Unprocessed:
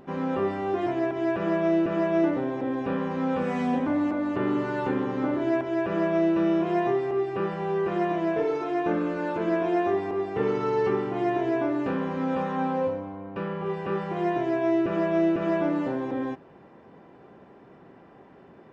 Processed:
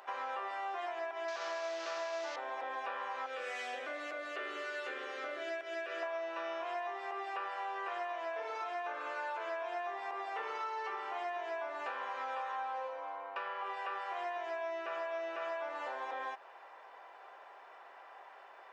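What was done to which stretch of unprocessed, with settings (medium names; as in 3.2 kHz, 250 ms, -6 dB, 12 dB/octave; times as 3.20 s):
1.28–2.36 s: one-bit delta coder 32 kbps, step -31.5 dBFS
3.26–6.03 s: static phaser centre 380 Hz, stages 4
whole clip: high-pass 720 Hz 24 dB/octave; compression, threshold -41 dBFS; trim +4 dB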